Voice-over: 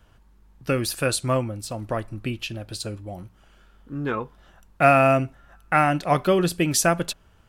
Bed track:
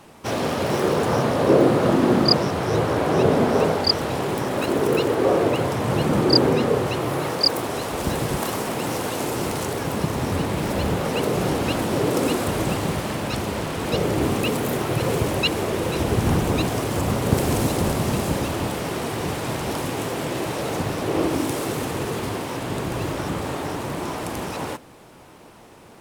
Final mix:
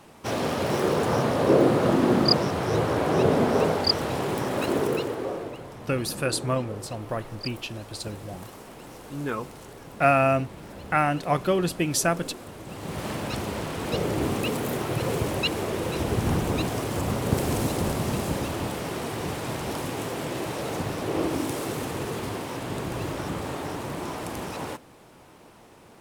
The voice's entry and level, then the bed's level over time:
5.20 s, -3.5 dB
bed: 4.77 s -3 dB
5.61 s -18 dB
12.63 s -18 dB
13.06 s -4.5 dB

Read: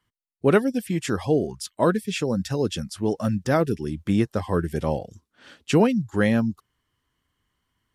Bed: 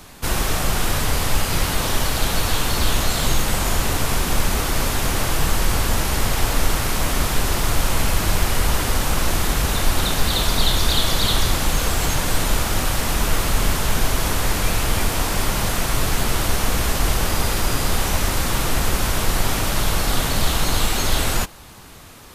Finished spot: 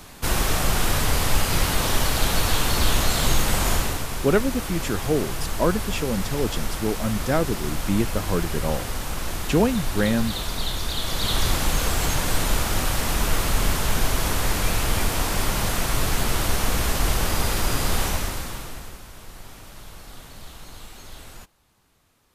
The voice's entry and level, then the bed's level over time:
3.80 s, -1.5 dB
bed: 3.73 s -1 dB
4.08 s -9 dB
10.95 s -9 dB
11.47 s -2.5 dB
18.04 s -2.5 dB
19.05 s -22 dB

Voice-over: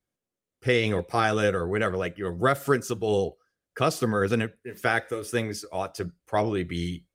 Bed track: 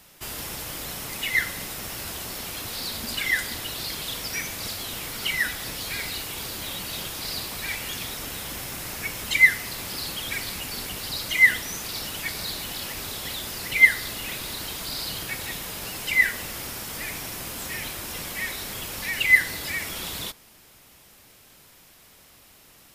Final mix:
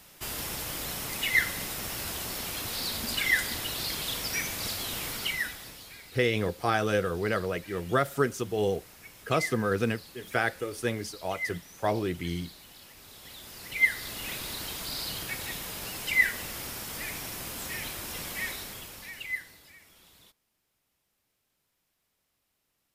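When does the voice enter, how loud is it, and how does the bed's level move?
5.50 s, -3.0 dB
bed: 5.11 s -1 dB
6.02 s -18 dB
12.97 s -18 dB
14.28 s -3.5 dB
18.49 s -3.5 dB
19.78 s -25 dB

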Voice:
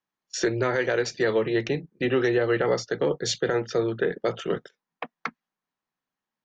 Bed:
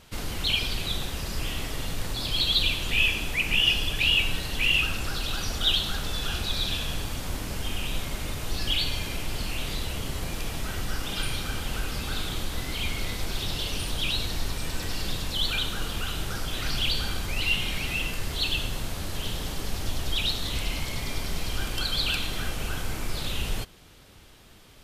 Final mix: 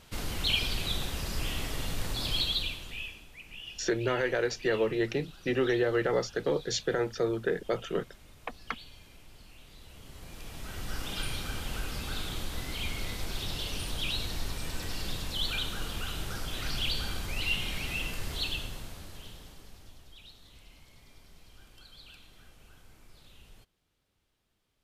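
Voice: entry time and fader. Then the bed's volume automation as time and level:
3.45 s, -4.5 dB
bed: 2.32 s -2.5 dB
3.28 s -22.5 dB
9.69 s -22.5 dB
10.99 s -5 dB
18.37 s -5 dB
20.14 s -25.5 dB

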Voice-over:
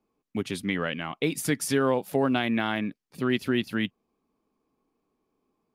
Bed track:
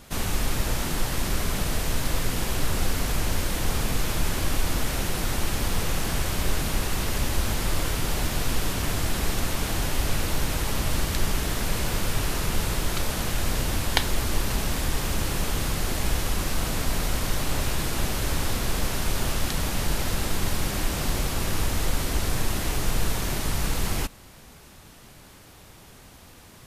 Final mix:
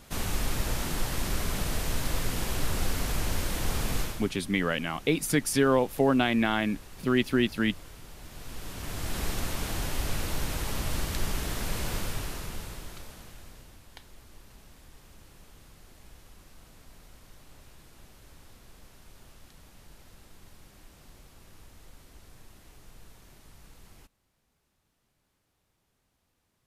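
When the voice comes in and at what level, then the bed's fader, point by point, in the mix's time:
3.85 s, +1.0 dB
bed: 4.01 s -4 dB
4.34 s -21 dB
8.18 s -21 dB
9.19 s -5.5 dB
11.96 s -5.5 dB
13.81 s -27 dB

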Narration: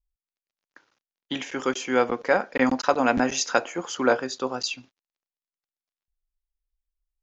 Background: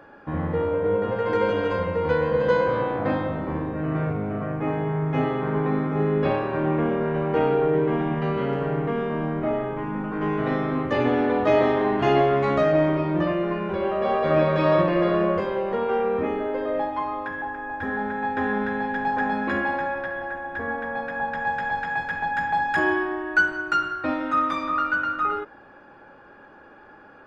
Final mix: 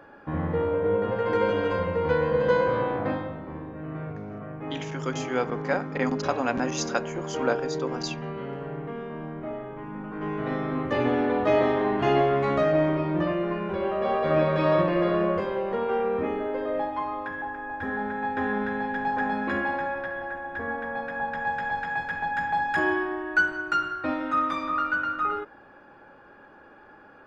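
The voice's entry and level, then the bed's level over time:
3.40 s, -5.5 dB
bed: 2.95 s -1.5 dB
3.42 s -9.5 dB
9.64 s -9.5 dB
10.91 s -2.5 dB

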